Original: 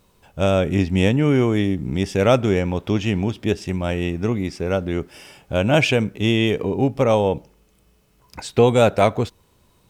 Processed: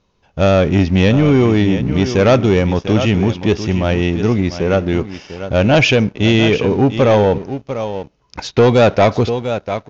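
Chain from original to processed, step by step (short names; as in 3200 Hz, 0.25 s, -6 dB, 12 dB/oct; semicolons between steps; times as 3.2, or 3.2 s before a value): echo 0.696 s -12.5 dB; sample leveller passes 2; steep low-pass 6700 Hz 96 dB/oct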